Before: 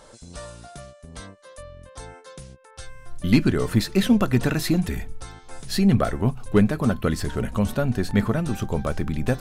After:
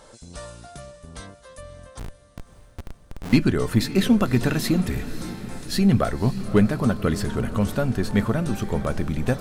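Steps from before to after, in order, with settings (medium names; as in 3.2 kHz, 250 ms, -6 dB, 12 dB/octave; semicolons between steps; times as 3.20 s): 1.99–3.33 s: Schmitt trigger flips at -31 dBFS; echo that smears into a reverb 564 ms, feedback 53%, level -13.5 dB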